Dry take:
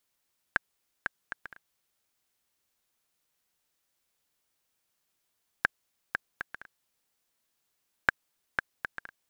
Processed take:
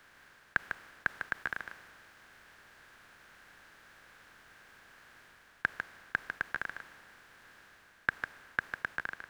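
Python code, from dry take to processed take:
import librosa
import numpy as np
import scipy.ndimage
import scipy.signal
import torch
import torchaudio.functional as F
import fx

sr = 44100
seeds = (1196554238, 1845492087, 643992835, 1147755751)

p1 = fx.bin_compress(x, sr, power=0.4)
p2 = fx.rider(p1, sr, range_db=3, speed_s=0.5)
p3 = p2 + fx.echo_single(p2, sr, ms=150, db=-6.5, dry=0)
p4 = fx.band_widen(p3, sr, depth_pct=40)
y = p4 * 10.0 ** (-6.5 / 20.0)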